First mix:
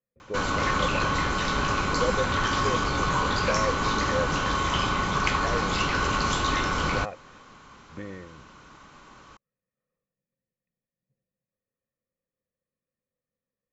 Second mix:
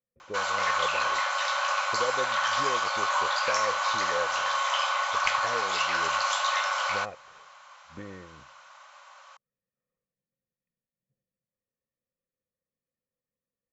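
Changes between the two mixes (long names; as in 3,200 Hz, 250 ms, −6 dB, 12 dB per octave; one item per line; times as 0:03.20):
speech −3.5 dB
background: add linear-phase brick-wall high-pass 520 Hz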